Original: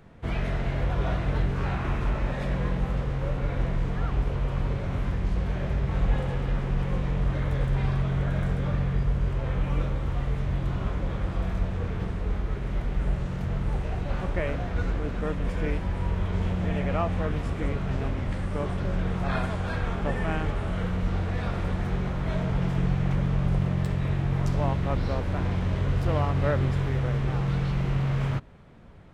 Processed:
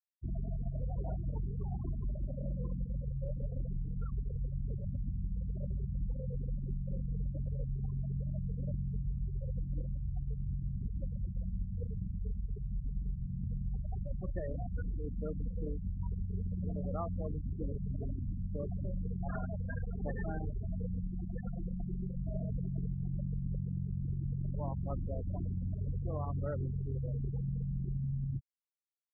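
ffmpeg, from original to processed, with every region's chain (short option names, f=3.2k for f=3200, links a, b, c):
-filter_complex "[0:a]asettb=1/sr,asplit=3[a][b][c];[a]atrim=end=21.024[d];[b]atrim=start=21.02:end=22.21,asetpts=PTS-STARTPTS,afade=t=in:d=0.004:c=qsin,afade=t=out:st=1.186:d=0.004:c=qsin,bandreject=f=50:t=h:w=6,bandreject=f=100:t=h:w=6,bandreject=f=150:t=h:w=6,bandreject=f=200:t=h:w=6,bandreject=f=250:t=h:w=6,bandreject=f=300:t=h:w=6,bandreject=f=350:t=h:w=6,bandreject=f=400:t=h:w=6,bandreject=f=450:t=h:w=6,aecho=1:1:5.7:0.56,atrim=end_sample=52479,aeval=exprs='(tanh(7.94*val(0)+0.45)-tanh(0.45))/7.94':c=same[e];[c]atrim=start=22.206[f];[d][e]acrossfade=d=0.004:c1=hsin:c2=qsin[g];[g][f]acrossfade=d=0.004:c1=qsin:c2=hsin,afftfilt=real='re*gte(hypot(re,im),0.1)':imag='im*gte(hypot(re,im),0.1)':win_size=1024:overlap=0.75,acompressor=threshold=-26dB:ratio=6,volume=-6dB"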